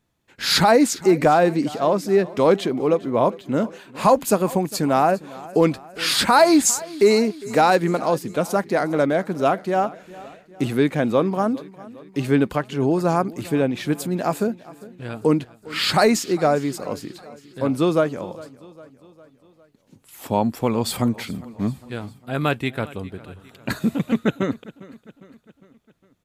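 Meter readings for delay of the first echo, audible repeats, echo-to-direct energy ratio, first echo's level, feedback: 405 ms, 3, -18.5 dB, -20.0 dB, 54%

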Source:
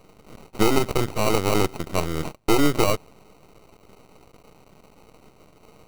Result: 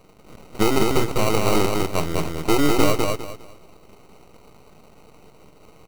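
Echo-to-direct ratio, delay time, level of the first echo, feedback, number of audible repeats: -2.5 dB, 202 ms, -3.0 dB, 26%, 3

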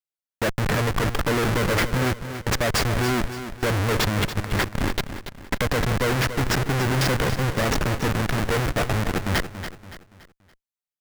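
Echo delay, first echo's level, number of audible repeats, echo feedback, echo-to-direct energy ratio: 284 ms, -10.5 dB, 3, 39%, -10.0 dB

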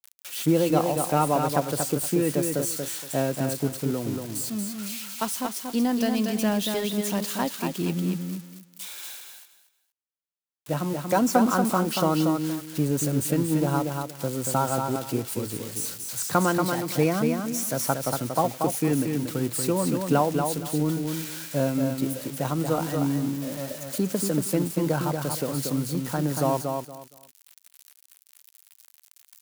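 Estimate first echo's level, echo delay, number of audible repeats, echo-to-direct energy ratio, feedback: -5.0 dB, 234 ms, 3, -5.0 dB, 22%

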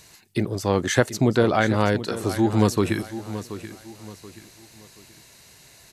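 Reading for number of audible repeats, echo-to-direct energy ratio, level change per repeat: 3, -12.5 dB, -9.0 dB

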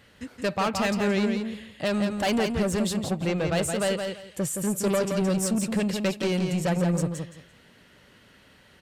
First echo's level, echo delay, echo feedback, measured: -5.5 dB, 170 ms, 21%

